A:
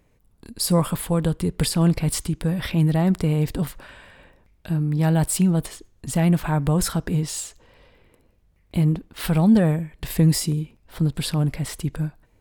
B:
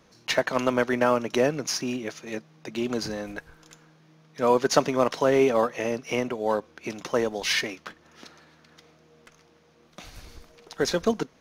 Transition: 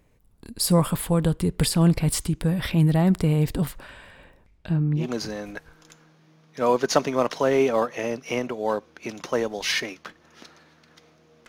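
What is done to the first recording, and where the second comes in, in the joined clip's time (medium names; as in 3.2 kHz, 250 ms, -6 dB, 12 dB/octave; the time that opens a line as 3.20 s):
A
4.43–5.07 s: low-pass 11 kHz -> 1.5 kHz
5.01 s: go over to B from 2.82 s, crossfade 0.12 s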